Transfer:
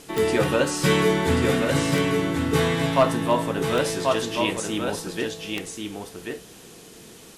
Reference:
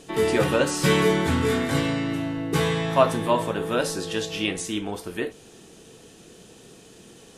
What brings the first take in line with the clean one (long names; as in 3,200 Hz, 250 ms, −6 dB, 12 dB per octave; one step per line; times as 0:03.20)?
clipped peaks rebuilt −9 dBFS
click removal
broadband denoise 6 dB, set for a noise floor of −45 dBFS
echo removal 1,086 ms −4.5 dB